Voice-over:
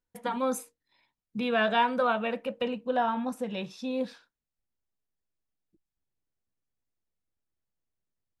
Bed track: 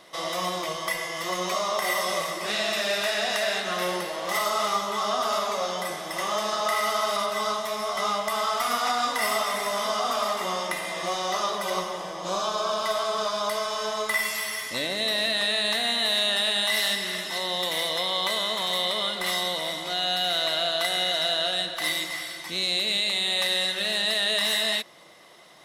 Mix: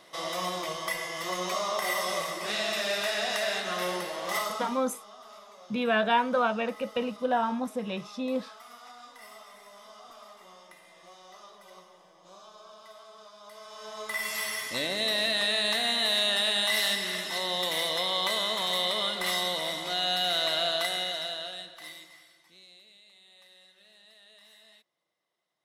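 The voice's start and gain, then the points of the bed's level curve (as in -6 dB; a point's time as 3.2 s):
4.35 s, +0.5 dB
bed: 4.38 s -3.5 dB
4.96 s -23.5 dB
13.39 s -23.5 dB
14.41 s -2 dB
20.73 s -2 dB
22.95 s -32 dB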